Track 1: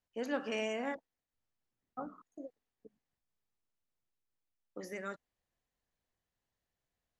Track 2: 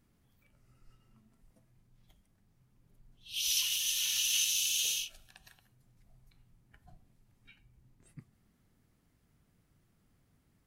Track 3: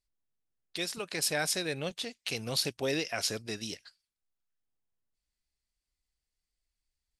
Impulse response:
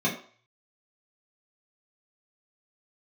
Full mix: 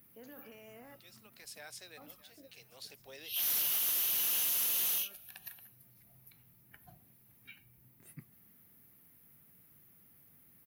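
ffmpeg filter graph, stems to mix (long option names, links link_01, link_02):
-filter_complex "[0:a]alimiter=level_in=9.5dB:limit=-24dB:level=0:latency=1:release=21,volume=-9.5dB,volume=-11.5dB,asplit=2[link_01][link_02];[1:a]equalizer=frequency=2200:width=1.5:gain=4.5,aexciter=amount=15.2:drive=4.5:freq=11000,asoftclip=type=hard:threshold=-24.5dB,volume=2.5dB[link_03];[2:a]highpass=550,adelay=250,volume=-16.5dB,asplit=2[link_04][link_05];[link_05]volume=-19dB[link_06];[link_02]apad=whole_len=328218[link_07];[link_04][link_07]sidechaincompress=threshold=-57dB:ratio=8:attack=16:release=1050[link_08];[link_06]aecho=0:1:618|1236|1854|2472|3090|3708|4326:1|0.51|0.26|0.133|0.0677|0.0345|0.0176[link_09];[link_01][link_03][link_08][link_09]amix=inputs=4:normalize=0,highpass=110,acompressor=threshold=-46dB:ratio=1.5"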